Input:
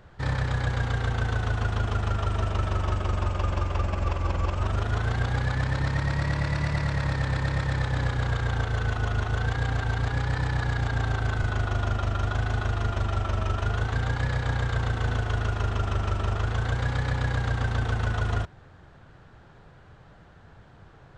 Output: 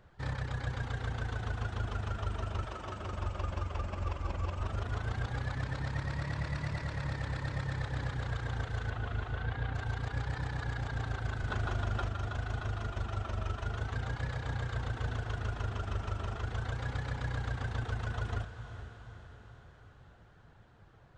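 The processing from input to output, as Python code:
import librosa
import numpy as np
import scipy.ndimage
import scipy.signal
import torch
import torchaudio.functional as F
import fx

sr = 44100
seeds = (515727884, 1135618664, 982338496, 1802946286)

y = fx.highpass(x, sr, hz=fx.line((2.65, 330.0), (3.16, 97.0)), slope=12, at=(2.65, 3.16), fade=0.02)
y = fx.dereverb_blind(y, sr, rt60_s=0.5)
y = fx.lowpass(y, sr, hz=3700.0, slope=24, at=(8.9, 9.75))
y = fx.echo_diffused(y, sr, ms=453, feedback_pct=57, wet_db=-11.0)
y = fx.env_flatten(y, sr, amount_pct=70, at=(11.5, 12.07))
y = y * 10.0 ** (-8.5 / 20.0)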